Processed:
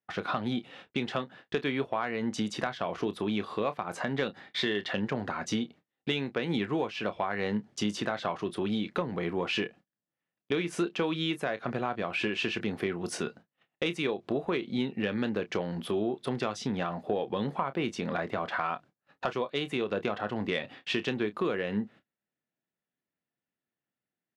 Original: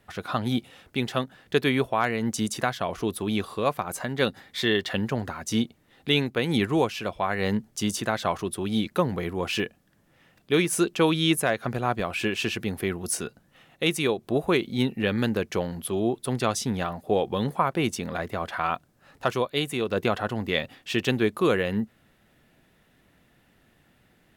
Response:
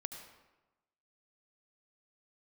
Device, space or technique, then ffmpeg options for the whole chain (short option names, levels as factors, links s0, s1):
AM radio: -filter_complex "[0:a]highpass=150,lowpass=3900,acompressor=threshold=0.0316:ratio=5,asoftclip=type=tanh:threshold=0.141,agate=range=0.0224:threshold=0.00251:ratio=16:detection=peak,asplit=2[s0][s1];[s1]adelay=29,volume=0.237[s2];[s0][s2]amix=inputs=2:normalize=0,volume=1.41"